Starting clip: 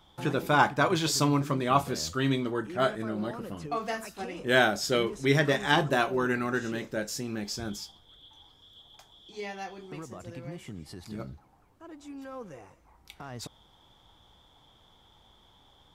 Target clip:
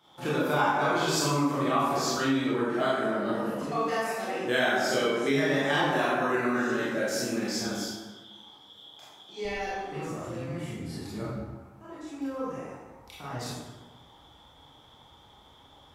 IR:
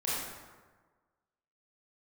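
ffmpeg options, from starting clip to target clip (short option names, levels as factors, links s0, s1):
-filter_complex "[0:a]asetnsamples=n=441:p=0,asendcmd='9.45 highpass f 53',highpass=180[s0];[1:a]atrim=start_sample=2205,asetrate=48510,aresample=44100[s1];[s0][s1]afir=irnorm=-1:irlink=0,acompressor=threshold=0.0631:ratio=3"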